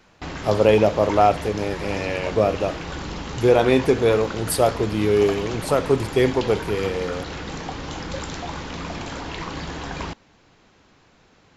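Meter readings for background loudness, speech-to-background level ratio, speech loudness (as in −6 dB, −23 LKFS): −31.5 LKFS, 10.5 dB, −21.0 LKFS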